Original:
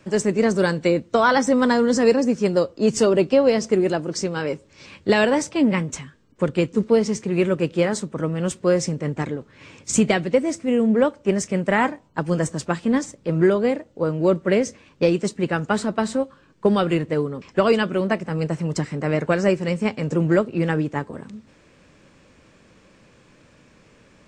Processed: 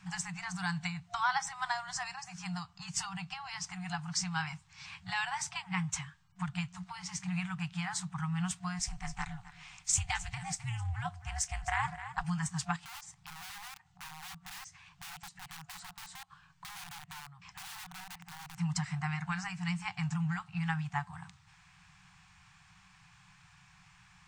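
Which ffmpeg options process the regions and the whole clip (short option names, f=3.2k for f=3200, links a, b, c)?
-filter_complex "[0:a]asettb=1/sr,asplit=3[a][b][c];[a]atrim=end=8.794[d];[b]atrim=start=8.79:end=12.24,asetpts=PTS-STARTPTS,afade=t=in:d=0.004:c=qsin,afade=t=out:st=3.446:d=0.004:c=qsin,highshelf=f=5.4k:g=7,aeval=exprs='val(0)*sin(2*PI*130*n/s)':c=same,aecho=1:1:261:0.141,atrim=end_sample=152145[e];[c]atrim=start=12.236[f];[d][e]acrossfade=d=0.004:c1=hsin:c2=qsin[g];[g][f]acrossfade=d=0.004:c1=qsin:c2=hsin,asettb=1/sr,asplit=3[h][i][j];[h]atrim=end=12.764[k];[i]atrim=start=12.76:end=18.58,asetpts=PTS-STARTPTS,afade=t=in:d=0.004:c=qsin,afade=t=out:st=5.816:d=0.004:c=qsin,aeval=exprs='(mod(10*val(0)+1,2)-1)/10':c=same,acompressor=threshold=-40dB:ratio=10:attack=3.2:release=140:knee=1:detection=peak[l];[j]atrim=start=18.576[m];[k][l]acrossfade=d=0.004:c1=hsin:c2=qsin[n];[n][m]acrossfade=d=0.004:c1=qsin:c2=hsin,acompressor=threshold=-21dB:ratio=6,lowshelf=f=170:g=-4,afftfilt=real='re*(1-between(b*sr/4096,190,710))':imag='im*(1-between(b*sr/4096,190,710))':win_size=4096:overlap=0.75,volume=-3.5dB"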